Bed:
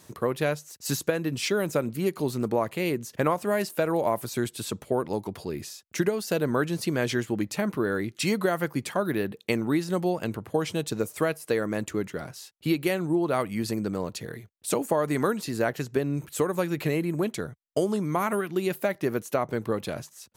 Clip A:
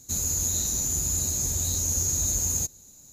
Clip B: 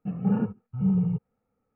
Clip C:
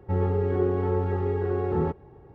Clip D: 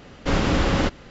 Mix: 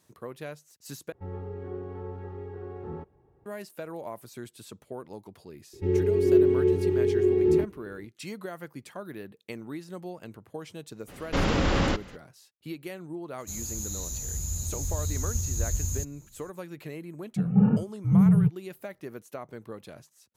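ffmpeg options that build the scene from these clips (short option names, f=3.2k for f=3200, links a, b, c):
-filter_complex "[3:a]asplit=2[a][b];[0:a]volume=-13dB[c];[b]firequalizer=gain_entry='entry(220,0);entry(370,13);entry(570,-10);entry(1400,-10);entry(2200,8)':delay=0.05:min_phase=1[d];[4:a]alimiter=limit=-13.5dB:level=0:latency=1:release=19[e];[1:a]asubboost=boost=9.5:cutoff=140[f];[2:a]equalizer=f=140:t=o:w=1:g=9[g];[c]asplit=2[h][i];[h]atrim=end=1.124[j];[a]atrim=end=2.34,asetpts=PTS-STARTPTS,volume=-13dB[k];[i]atrim=start=3.456[l];[d]atrim=end=2.34,asetpts=PTS-STARTPTS,volume=-4.5dB,afade=t=in:d=0.004:c=hsin,afade=t=out:st=2.336:d=0.004:c=hsin,adelay=252693S[m];[e]atrim=end=1.1,asetpts=PTS-STARTPTS,volume=-2dB,afade=t=in:d=0.02,afade=t=out:st=1.08:d=0.02,adelay=11070[n];[f]atrim=end=3.12,asetpts=PTS-STARTPTS,volume=-9.5dB,afade=t=in:d=0.004:c=hsin,afade=t=out:st=3.116:d=0.004:c=hsin,adelay=13380[o];[g]atrim=end=1.75,asetpts=PTS-STARTPTS,volume=-1dB,afade=t=in:d=0.004:c=hsin,afade=t=out:st=1.746:d=0.004:c=hsin,adelay=17310[p];[j][k]acrossfade=d=0.004:c1=hsin:c2=hsin[q];[q][l]acrossfade=d=0.004:c1=hsin:c2=hsin[r];[r][m][n][o][p]amix=inputs=5:normalize=0"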